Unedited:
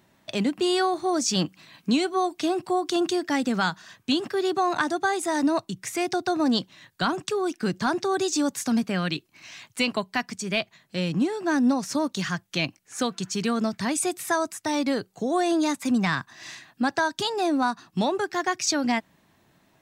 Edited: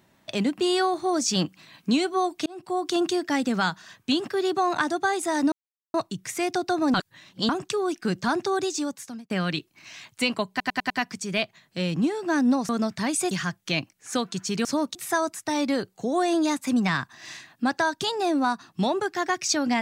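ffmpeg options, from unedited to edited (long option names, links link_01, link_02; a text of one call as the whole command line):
ffmpeg -i in.wav -filter_complex "[0:a]asplit=14[link_01][link_02][link_03][link_04][link_05][link_06][link_07][link_08][link_09][link_10][link_11][link_12][link_13][link_14];[link_01]atrim=end=2.46,asetpts=PTS-STARTPTS,afade=type=out:start_time=2.456:duration=0.004:curve=hsin[link_15];[link_02]atrim=start=2.46:end=5.52,asetpts=PTS-STARTPTS,afade=type=in:duration=0.4,afade=type=out:start_time=3.056:duration=0.004:curve=hsin,apad=pad_dur=0.42[link_16];[link_03]atrim=start=5.52:end=6.522,asetpts=PTS-STARTPTS,afade=type=in:duration=0.004:curve=hsin[link_17];[link_04]atrim=start=6.518:end=7.072,asetpts=PTS-STARTPTS,areverse[link_18];[link_05]atrim=start=7.068:end=8.88,asetpts=PTS-STARTPTS,afade=type=out:start_time=1.022:duration=0.79[link_19];[link_06]atrim=start=8.88:end=10.182,asetpts=PTS-STARTPTS,afade=type=in:duration=0.004:curve=hsin[link_20];[link_07]atrim=start=10.078:end=10.182[link_21];[link_08]atrim=start=10.078:end=10.182[link_22];[link_09]atrim=start=10.078:end=10.182[link_23];[link_10]atrim=start=10.078:end=11.872[link_24];[link_11]atrim=start=13.508:end=14.132[link_25];[link_12]atrim=start=12.168:end=13.512[link_26];[link_13]atrim=start=11.868:end=12.172[link_27];[link_14]atrim=start=14.128[link_28];[link_15][link_16][link_17]concat=n=3:v=0:a=1[link_29];[link_29][link_18]acrossfade=duration=0.004:curve1=hsin:curve2=hsin[link_30];[link_19][link_20]concat=n=2:v=0:a=1[link_31];[link_30][link_31]acrossfade=duration=0.004:curve1=hsin:curve2=hsin[link_32];[link_32][link_21]acrossfade=duration=0.004:curve1=hsin:curve2=hsin[link_33];[link_33][link_22]acrossfade=duration=0.004:curve1=hsin:curve2=hsin[link_34];[link_34][link_23]acrossfade=duration=0.004:curve1=hsin:curve2=hsin[link_35];[link_35][link_24]acrossfade=duration=0.004:curve1=hsin:curve2=hsin[link_36];[link_36][link_25]acrossfade=duration=0.004:curve1=hsin:curve2=hsin[link_37];[link_37][link_26]acrossfade=duration=0.004:curve1=hsin:curve2=hsin[link_38];[link_38][link_27]acrossfade=duration=0.004:curve1=hsin:curve2=hsin[link_39];[link_39][link_28]acrossfade=duration=0.004:curve1=hsin:curve2=hsin" out.wav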